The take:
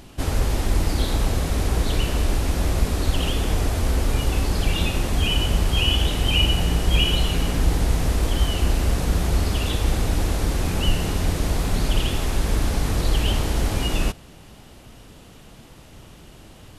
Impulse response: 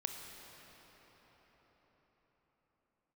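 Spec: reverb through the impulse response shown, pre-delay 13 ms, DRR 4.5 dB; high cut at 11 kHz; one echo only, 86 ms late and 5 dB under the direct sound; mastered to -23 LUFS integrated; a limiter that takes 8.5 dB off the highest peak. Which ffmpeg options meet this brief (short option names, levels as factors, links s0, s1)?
-filter_complex "[0:a]lowpass=11000,alimiter=limit=0.188:level=0:latency=1,aecho=1:1:86:0.562,asplit=2[s0][s1];[1:a]atrim=start_sample=2205,adelay=13[s2];[s1][s2]afir=irnorm=-1:irlink=0,volume=0.562[s3];[s0][s3]amix=inputs=2:normalize=0,volume=0.944"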